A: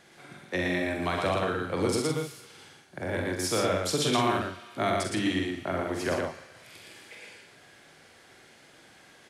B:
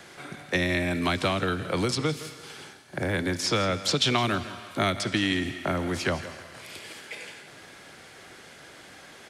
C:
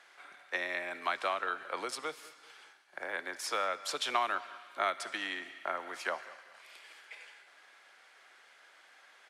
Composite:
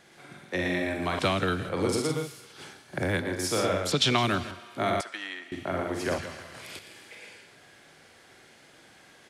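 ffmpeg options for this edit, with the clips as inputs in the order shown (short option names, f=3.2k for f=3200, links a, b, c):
-filter_complex "[1:a]asplit=4[a][b][c][d];[0:a]asplit=6[e][f][g][h][i][j];[e]atrim=end=1.192[k];[a]atrim=start=1.188:end=1.692[l];[f]atrim=start=1.688:end=2.62[m];[b]atrim=start=2.52:end=3.27[n];[g]atrim=start=3.17:end=3.922[o];[c]atrim=start=3.918:end=4.512[p];[h]atrim=start=4.508:end=5.012[q];[2:a]atrim=start=5.008:end=5.522[r];[i]atrim=start=5.518:end=6.182[s];[d]atrim=start=6.178:end=6.792[t];[j]atrim=start=6.788[u];[k][l]acrossfade=d=0.004:c1=hsin:c2=hsin[v];[v][m]acrossfade=d=0.004:c1=hsin:c2=hsin[w];[w][n]acrossfade=d=0.1:c1=tri:c2=tri[x];[x][o]acrossfade=d=0.1:c1=tri:c2=tri[y];[y][p]acrossfade=d=0.004:c1=hsin:c2=hsin[z];[z][q]acrossfade=d=0.004:c1=hsin:c2=hsin[aa];[aa][r]acrossfade=d=0.004:c1=hsin:c2=hsin[ab];[ab][s]acrossfade=d=0.004:c1=hsin:c2=hsin[ac];[ac][t]acrossfade=d=0.004:c1=hsin:c2=hsin[ad];[ad][u]acrossfade=d=0.004:c1=hsin:c2=hsin"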